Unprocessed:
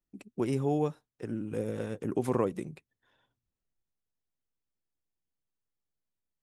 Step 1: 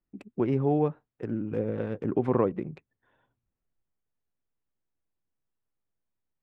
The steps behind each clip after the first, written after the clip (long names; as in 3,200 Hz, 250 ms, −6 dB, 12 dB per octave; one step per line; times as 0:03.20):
adaptive Wiener filter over 9 samples
treble cut that deepens with the level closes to 2,600 Hz, closed at −28.5 dBFS
high-shelf EQ 3,900 Hz −7.5 dB
level +4 dB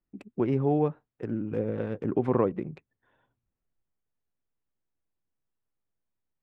no processing that can be heard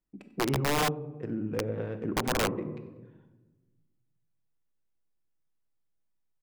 repeating echo 95 ms, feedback 51%, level −20.5 dB
rectangular room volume 690 cubic metres, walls mixed, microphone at 0.58 metres
wrap-around overflow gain 17.5 dB
level −2.5 dB